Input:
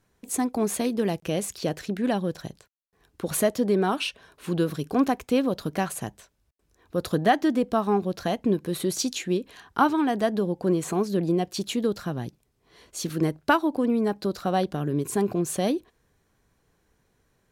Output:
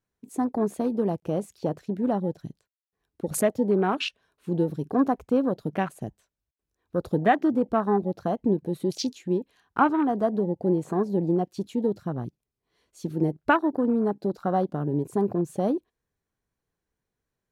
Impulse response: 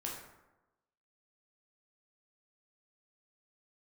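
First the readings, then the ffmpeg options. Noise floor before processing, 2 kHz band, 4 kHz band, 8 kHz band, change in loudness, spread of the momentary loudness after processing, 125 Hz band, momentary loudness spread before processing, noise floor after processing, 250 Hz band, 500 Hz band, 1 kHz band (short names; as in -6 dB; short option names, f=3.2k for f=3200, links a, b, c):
-70 dBFS, -1.5 dB, -5.5 dB, -8.5 dB, -0.5 dB, 9 LU, 0.0 dB, 9 LU, under -85 dBFS, 0.0 dB, 0.0 dB, 0.0 dB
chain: -af "afwtdn=0.0224"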